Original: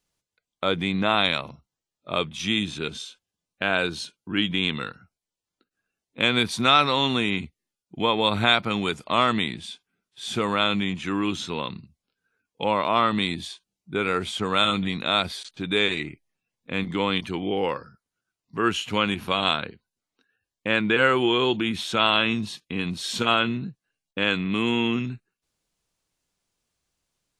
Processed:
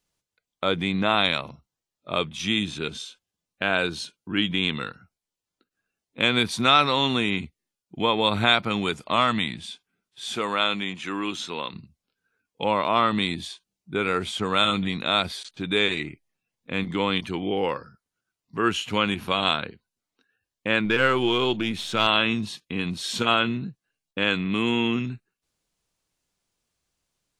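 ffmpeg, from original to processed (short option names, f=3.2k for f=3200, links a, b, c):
-filter_complex "[0:a]asettb=1/sr,asplit=3[a][b][c];[a]atrim=end=9.164[d];[b]atrim=start=9.16:end=9.61,asetpts=PTS-STARTPTS,afade=t=in:d=0.004:c=qsin,afade=t=out:st=0.446:d=0.004:c=qsin,equalizer=f=390:t=o:w=0.52:g=-8.5[e];[c]atrim=start=9.606[f];[d][e]acrossfade=d=0.004:c1=hsin:c2=qsin[g];[g][f]acrossfade=d=0.004:c1=qsin:c2=hsin,asettb=1/sr,asplit=3[h][i][j];[h]atrim=end=10.254[k];[i]atrim=start=10.25:end=11.74,asetpts=PTS-STARTPTS,afade=t=in:d=0.004:c=qsin,afade=t=out:st=1.486:d=0.004:c=qsin,highpass=f=400:p=1[l];[j]atrim=start=11.736[m];[k][l]acrossfade=d=0.004:c1=hsin:c2=qsin[n];[n][m]acrossfade=d=0.004:c1=qsin:c2=hsin,asettb=1/sr,asplit=3[o][p][q];[o]atrim=end=20.854[r];[p]atrim=start=20.85:end=22.07,asetpts=PTS-STARTPTS,afade=t=in:d=0.004:c=qsin,afade=t=out:st=1.216:d=0.004:c=qsin,aeval=exprs='if(lt(val(0),0),0.708*val(0),val(0))':c=same[s];[q]atrim=start=22.066[t];[r][s]acrossfade=d=0.004:c1=hsin:c2=qsin[u];[u][t]acrossfade=d=0.004:c1=qsin:c2=hsin"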